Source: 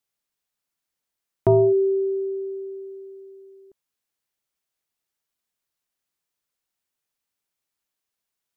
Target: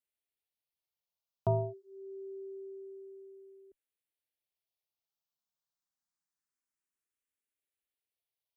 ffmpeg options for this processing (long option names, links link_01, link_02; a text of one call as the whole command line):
ffmpeg -i in.wav -filter_complex "[0:a]asplit=2[link_01][link_02];[link_02]afreqshift=0.26[link_03];[link_01][link_03]amix=inputs=2:normalize=1,volume=-8dB" out.wav